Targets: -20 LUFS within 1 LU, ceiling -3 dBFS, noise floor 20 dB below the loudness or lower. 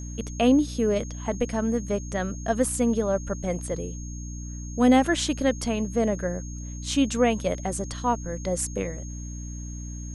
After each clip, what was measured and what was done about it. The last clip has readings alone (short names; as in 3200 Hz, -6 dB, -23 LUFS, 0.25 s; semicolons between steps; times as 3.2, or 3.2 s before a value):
hum 60 Hz; harmonics up to 300 Hz; hum level -33 dBFS; steady tone 6500 Hz; tone level -43 dBFS; loudness -26.0 LUFS; peak -7.0 dBFS; loudness target -20.0 LUFS
-> notches 60/120/180/240/300 Hz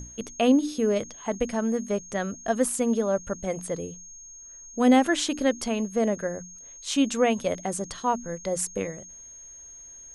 hum none; steady tone 6500 Hz; tone level -43 dBFS
-> notch 6500 Hz, Q 30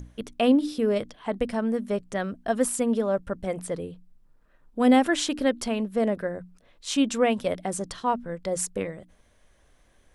steady tone none; loudness -26.0 LUFS; peak -7.5 dBFS; loudness target -20.0 LUFS
-> gain +6 dB; limiter -3 dBFS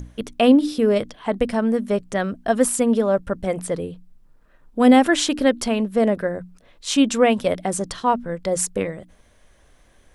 loudness -20.0 LUFS; peak -3.0 dBFS; noise floor -55 dBFS